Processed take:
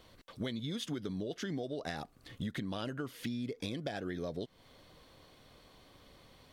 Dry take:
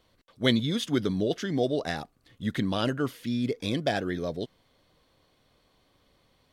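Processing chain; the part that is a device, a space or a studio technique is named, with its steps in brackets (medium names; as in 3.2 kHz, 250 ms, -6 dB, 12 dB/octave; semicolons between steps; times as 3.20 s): serial compression, leveller first (compression 2.5:1, threshold -31 dBFS, peak gain reduction 9.5 dB; compression 5:1, threshold -43 dBFS, peak gain reduction 15.5 dB); trim +6.5 dB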